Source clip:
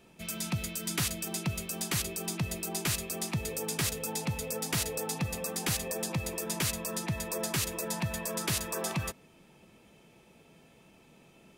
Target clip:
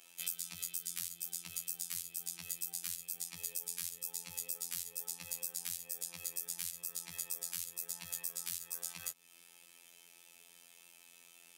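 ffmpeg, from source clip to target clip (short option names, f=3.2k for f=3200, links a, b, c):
-filter_complex "[0:a]afftfilt=real='hypot(re,im)*cos(PI*b)':imag='0':win_size=2048:overlap=0.75,aderivative,acrossover=split=170[a][b];[b]acompressor=threshold=-48dB:ratio=10[c];[a][c]amix=inputs=2:normalize=0,volume=13dB"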